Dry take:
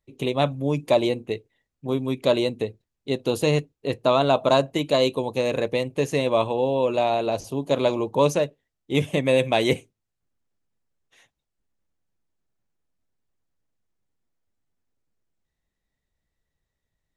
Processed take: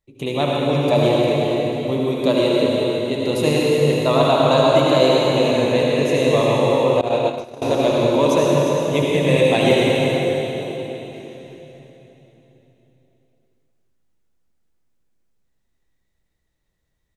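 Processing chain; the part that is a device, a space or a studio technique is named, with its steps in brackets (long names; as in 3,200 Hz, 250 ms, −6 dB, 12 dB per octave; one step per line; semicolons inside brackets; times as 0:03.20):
cave (single-tap delay 355 ms −9.5 dB; convolution reverb RT60 3.7 s, pre-delay 64 ms, DRR −4.5 dB)
0:07.01–0:07.62: noise gate −15 dBFS, range −21 dB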